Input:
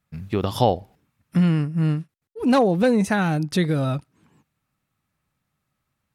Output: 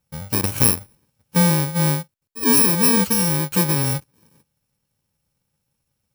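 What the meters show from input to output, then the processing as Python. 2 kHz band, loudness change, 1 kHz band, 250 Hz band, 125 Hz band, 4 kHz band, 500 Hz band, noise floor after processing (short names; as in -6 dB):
+2.5 dB, +4.5 dB, -2.0 dB, -0.5 dB, +1.0 dB, +7.5 dB, -4.0 dB, -77 dBFS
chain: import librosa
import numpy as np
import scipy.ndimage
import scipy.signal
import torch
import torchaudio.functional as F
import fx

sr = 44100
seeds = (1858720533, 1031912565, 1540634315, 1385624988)

y = fx.bit_reversed(x, sr, seeds[0], block=64)
y = F.gain(torch.from_numpy(y), 2.0).numpy()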